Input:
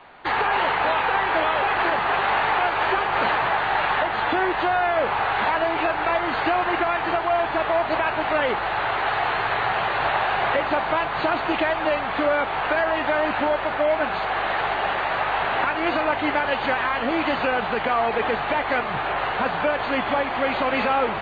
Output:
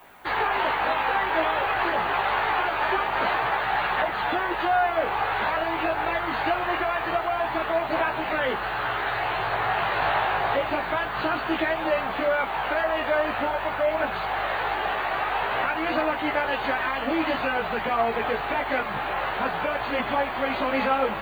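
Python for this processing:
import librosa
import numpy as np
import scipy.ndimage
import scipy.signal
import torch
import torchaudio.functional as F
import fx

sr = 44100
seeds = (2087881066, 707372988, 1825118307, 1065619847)

y = fx.chorus_voices(x, sr, voices=2, hz=0.25, base_ms=17, depth_ms=1.9, mix_pct=45)
y = fx.dmg_noise_colour(y, sr, seeds[0], colour='violet', level_db=-61.0)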